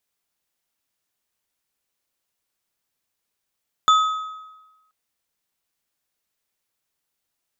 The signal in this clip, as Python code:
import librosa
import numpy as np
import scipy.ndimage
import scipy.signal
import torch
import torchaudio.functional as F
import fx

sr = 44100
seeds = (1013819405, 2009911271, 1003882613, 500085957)

y = fx.strike_metal(sr, length_s=1.03, level_db=-10.0, body='bar', hz=1270.0, decay_s=1.14, tilt_db=9.0, modes=3)